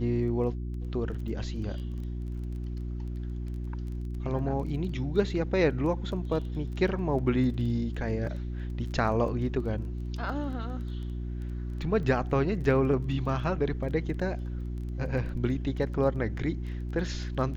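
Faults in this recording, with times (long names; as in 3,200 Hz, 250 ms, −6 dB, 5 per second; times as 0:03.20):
surface crackle 13 per second −38 dBFS
mains hum 60 Hz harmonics 6 −34 dBFS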